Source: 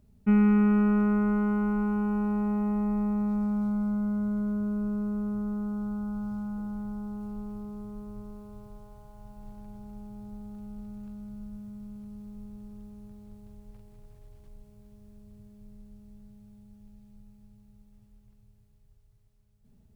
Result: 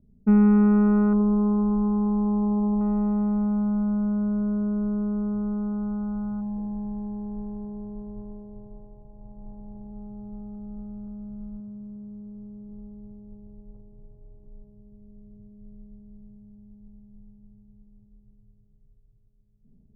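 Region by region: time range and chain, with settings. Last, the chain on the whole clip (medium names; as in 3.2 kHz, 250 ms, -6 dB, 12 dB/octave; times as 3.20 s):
1.13–2.81 s: resonances exaggerated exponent 1.5 + resonant high shelf 1.5 kHz -13.5 dB, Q 3
6.40–9.91 s: Chebyshev band-stop 1–2.3 kHz, order 3 + mains buzz 60 Hz, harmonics 31, -68 dBFS -3 dB/octave
11.60–12.69 s: high-pass 85 Hz 6 dB/octave + band-stop 870 Hz, Q 10
whole clip: level-controlled noise filter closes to 310 Hz, open at -27 dBFS; low-pass 1.1 kHz 12 dB/octave; peaking EQ 76 Hz -9.5 dB 1.1 oct; trim +5 dB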